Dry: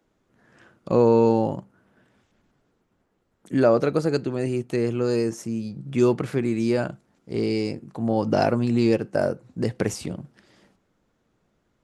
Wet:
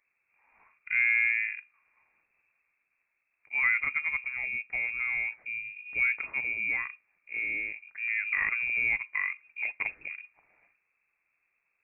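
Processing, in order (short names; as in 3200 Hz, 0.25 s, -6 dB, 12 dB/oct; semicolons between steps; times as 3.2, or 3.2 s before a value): inverted band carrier 2600 Hz; gain -8.5 dB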